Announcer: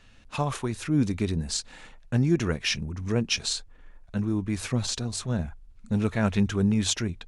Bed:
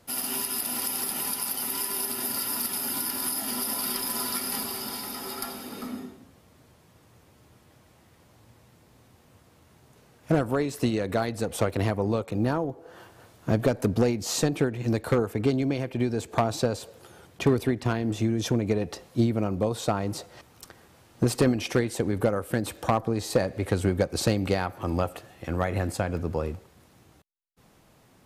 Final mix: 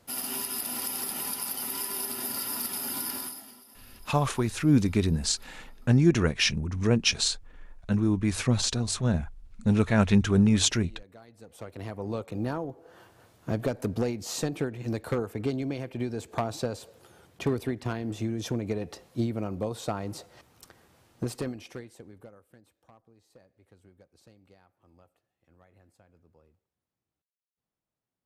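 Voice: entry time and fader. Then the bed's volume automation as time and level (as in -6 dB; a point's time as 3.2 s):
3.75 s, +2.5 dB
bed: 3.16 s -3 dB
3.63 s -25 dB
11.22 s -25 dB
12.18 s -5.5 dB
21.08 s -5.5 dB
22.77 s -33.5 dB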